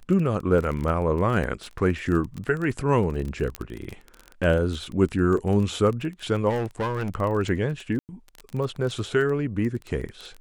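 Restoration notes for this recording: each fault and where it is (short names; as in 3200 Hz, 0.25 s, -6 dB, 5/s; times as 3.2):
crackle 23/s -29 dBFS
3.55 pop -14 dBFS
6.49–7.1 clipped -22.5 dBFS
7.99–8.09 gap 99 ms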